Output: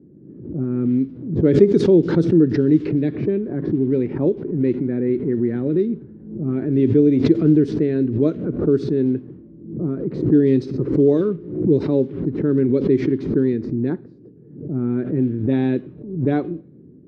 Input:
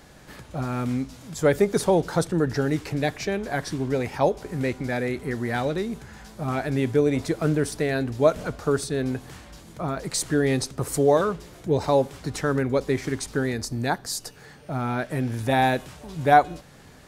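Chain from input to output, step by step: Chebyshev band-pass 150–3900 Hz, order 2; resonant low shelf 520 Hz +13.5 dB, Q 3; level-controlled noise filter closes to 370 Hz, open at -1 dBFS; on a send at -17 dB: tilt EQ +3.5 dB/octave + reverberation, pre-delay 3 ms; on the sum: swell ahead of each attack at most 87 dB/s; trim -9 dB

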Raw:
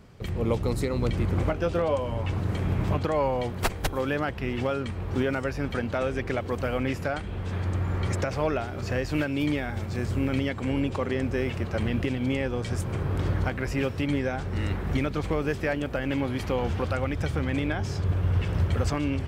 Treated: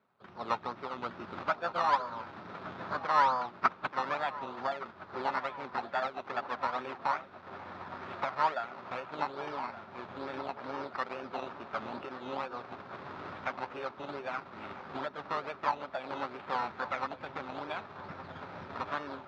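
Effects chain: dynamic bell 1.3 kHz, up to +3 dB, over -45 dBFS, Q 0.9; decimation with a swept rate 15×, swing 60% 2.3 Hz; formant shift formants +6 st; cabinet simulation 300–3700 Hz, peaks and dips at 320 Hz -7 dB, 470 Hz -9 dB, 940 Hz +4 dB, 1.3 kHz +8 dB, 2 kHz -3 dB, 3 kHz -7 dB; filtered feedback delay 1170 ms, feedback 73%, low-pass 2.4 kHz, level -11 dB; upward expansion 1.5:1, over -48 dBFS; trim -3 dB

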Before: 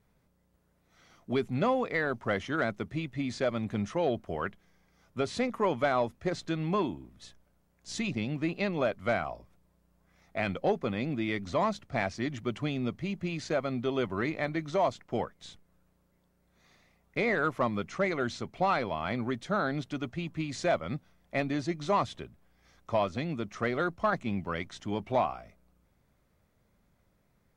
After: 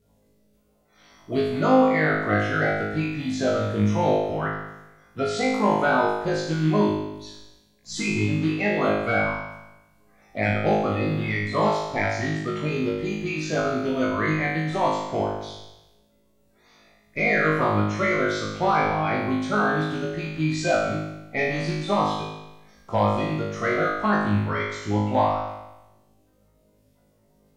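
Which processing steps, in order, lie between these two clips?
coarse spectral quantiser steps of 30 dB; flutter echo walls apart 3.3 m, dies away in 0.97 s; trim +2.5 dB

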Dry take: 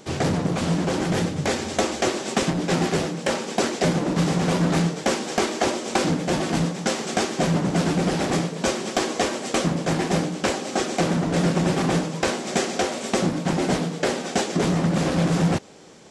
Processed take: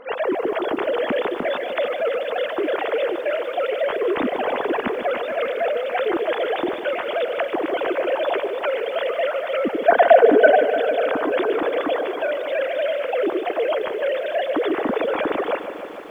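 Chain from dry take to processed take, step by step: formants replaced by sine waves; peak limiter -18 dBFS, peak gain reduction 10.5 dB; 9.88–10.64 s: small resonant body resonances 240/420/660/1500 Hz, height 15 dB, ringing for 30 ms; band noise 230–1300 Hz -51 dBFS; bit-crushed delay 149 ms, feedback 80%, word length 9-bit, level -12 dB; trim +2.5 dB

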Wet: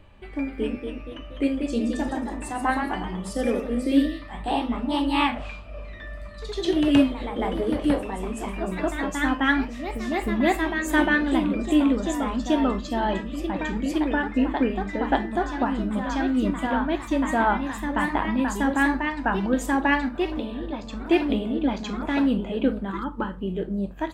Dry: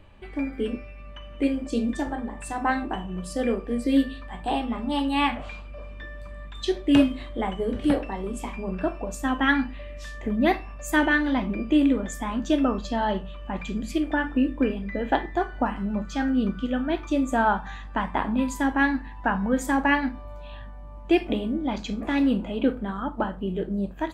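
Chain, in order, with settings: ever faster or slower copies 268 ms, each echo +1 st, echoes 3, each echo -6 dB; 22.90–23.42 s: Butterworth band-stop 690 Hz, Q 2.4

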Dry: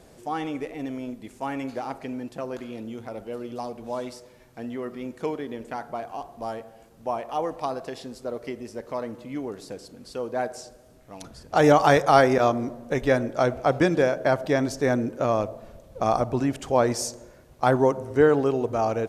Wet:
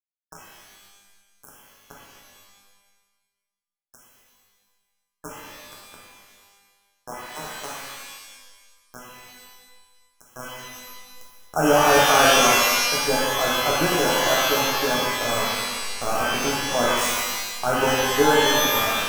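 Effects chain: treble shelf 3.8 kHz +8.5 dB; small samples zeroed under -19.5 dBFS; brick-wall FIR band-stop 1.7–5.2 kHz; pitch-shifted reverb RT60 1.3 s, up +12 st, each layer -2 dB, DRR -4 dB; trim -5.5 dB

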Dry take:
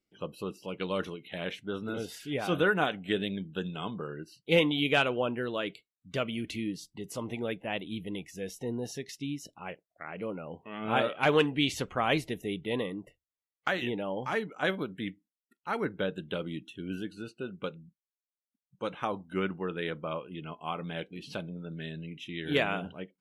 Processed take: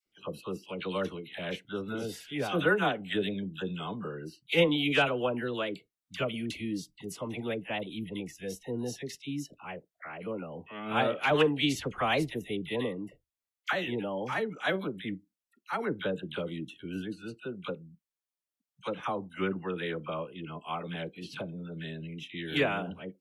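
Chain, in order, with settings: phase dispersion lows, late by 61 ms, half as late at 1 kHz

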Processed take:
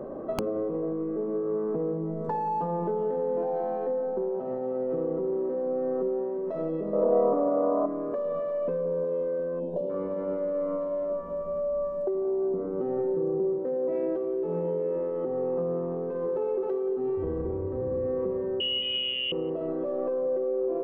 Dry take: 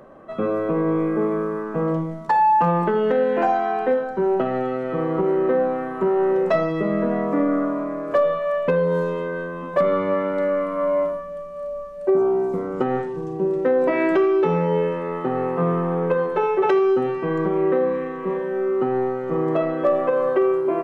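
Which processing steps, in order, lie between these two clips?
17.17–18.06 s: octave divider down 2 oct, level +4 dB; in parallel at -7 dB: overload inside the chain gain 24.5 dB; on the sum: peak limiter -16.5 dBFS, peak gain reduction 8.5 dB; FFT filter 140 Hz 0 dB, 410 Hz +7 dB, 2.2 kHz -15 dB; spring tank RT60 3.7 s, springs 33 ms, chirp 55 ms, DRR 9.5 dB; 18.60–19.32 s: frequency inversion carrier 3.3 kHz; compression 16:1, threshold -29 dBFS, peak gain reduction 18.5 dB; on a send: bucket-brigade echo 179 ms, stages 2048, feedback 80%, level -13.5 dB; on the sum: integer overflow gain 20.5 dB; 6.93–7.86 s: high-order bell 760 Hz +11.5 dB; 9.60–9.90 s: time-frequency box 1–2.6 kHz -22 dB; trim +2 dB

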